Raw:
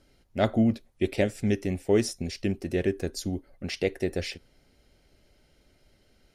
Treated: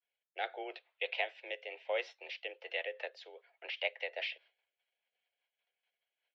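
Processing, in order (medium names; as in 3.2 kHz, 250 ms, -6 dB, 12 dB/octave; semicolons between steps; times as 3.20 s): expander -49 dBFS; differentiator; in parallel at +2 dB: compression, threshold -48 dBFS, peak gain reduction 15.5 dB; on the sum: rotary cabinet horn 0.8 Hz, later 5 Hz, at 2.22 s; mistuned SSB +130 Hz 320–3000 Hz; trim +9 dB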